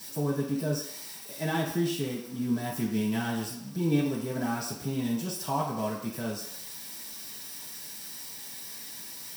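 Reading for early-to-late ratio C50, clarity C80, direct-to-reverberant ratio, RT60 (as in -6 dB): 5.0 dB, 7.5 dB, -8.5 dB, not exponential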